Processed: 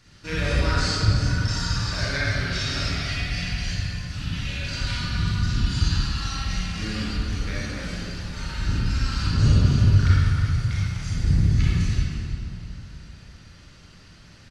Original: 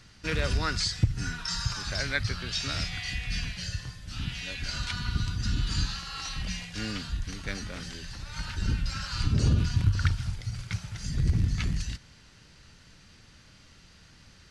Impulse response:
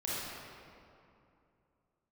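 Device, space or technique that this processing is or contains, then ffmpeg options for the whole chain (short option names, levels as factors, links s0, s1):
cave: -filter_complex "[0:a]aecho=1:1:318:0.251[s0];[1:a]atrim=start_sample=2205[s1];[s0][s1]afir=irnorm=-1:irlink=0"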